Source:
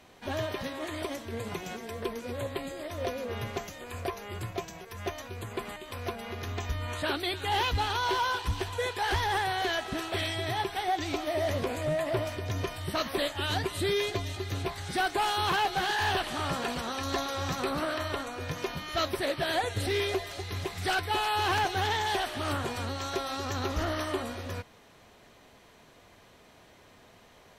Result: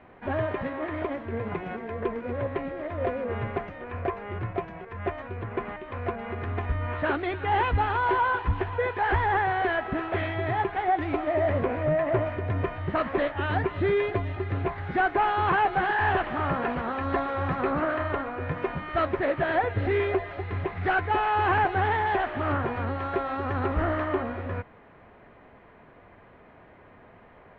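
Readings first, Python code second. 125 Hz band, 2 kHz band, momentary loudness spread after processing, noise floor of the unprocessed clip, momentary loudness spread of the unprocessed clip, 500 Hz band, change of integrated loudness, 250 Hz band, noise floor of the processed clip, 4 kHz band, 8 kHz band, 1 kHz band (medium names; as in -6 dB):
+5.0 dB, +3.5 dB, 10 LU, -57 dBFS, 10 LU, +5.0 dB, +4.0 dB, +5.0 dB, -53 dBFS, -11.0 dB, under -35 dB, +5.0 dB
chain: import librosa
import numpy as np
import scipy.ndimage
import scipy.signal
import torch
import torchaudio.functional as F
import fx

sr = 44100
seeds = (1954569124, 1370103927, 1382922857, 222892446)

y = scipy.signal.sosfilt(scipy.signal.butter(4, 2100.0, 'lowpass', fs=sr, output='sos'), x)
y = F.gain(torch.from_numpy(y), 5.0).numpy()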